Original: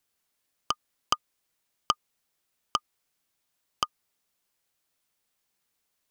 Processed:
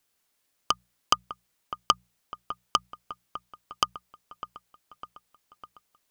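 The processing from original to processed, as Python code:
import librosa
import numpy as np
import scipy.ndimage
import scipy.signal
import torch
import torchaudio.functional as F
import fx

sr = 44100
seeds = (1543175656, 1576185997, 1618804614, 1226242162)

y = fx.hum_notches(x, sr, base_hz=60, count=3)
y = fx.echo_wet_lowpass(y, sr, ms=603, feedback_pct=60, hz=1800.0, wet_db=-12)
y = y * 10.0 ** (3.5 / 20.0)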